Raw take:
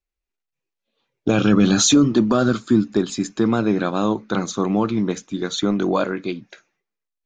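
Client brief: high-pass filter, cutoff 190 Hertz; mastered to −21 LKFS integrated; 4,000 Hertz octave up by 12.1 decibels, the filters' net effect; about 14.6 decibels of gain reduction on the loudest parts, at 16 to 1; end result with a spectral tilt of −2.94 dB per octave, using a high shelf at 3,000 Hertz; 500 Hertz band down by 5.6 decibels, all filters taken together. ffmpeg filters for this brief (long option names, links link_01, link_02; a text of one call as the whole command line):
ffmpeg -i in.wav -af "highpass=190,equalizer=frequency=500:width_type=o:gain=-8,highshelf=frequency=3000:gain=6.5,equalizer=frequency=4000:width_type=o:gain=9,acompressor=threshold=-18dB:ratio=16,volume=3dB" out.wav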